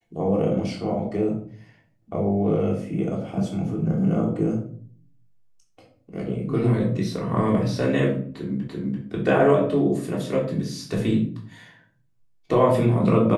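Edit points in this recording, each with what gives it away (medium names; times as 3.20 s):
8.68 s: repeat of the last 0.34 s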